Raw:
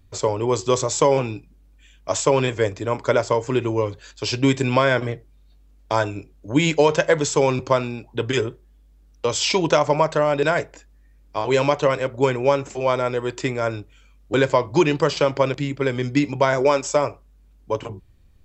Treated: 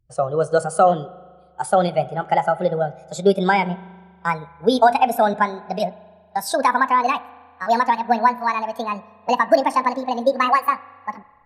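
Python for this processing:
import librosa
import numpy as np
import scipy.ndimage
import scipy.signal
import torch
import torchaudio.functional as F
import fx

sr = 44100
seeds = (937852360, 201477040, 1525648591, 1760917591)

y = fx.speed_glide(x, sr, from_pct=126, to_pct=196)
y = fx.rev_spring(y, sr, rt60_s=2.4, pass_ms=(39,), chirp_ms=30, drr_db=11.5)
y = fx.spectral_expand(y, sr, expansion=1.5)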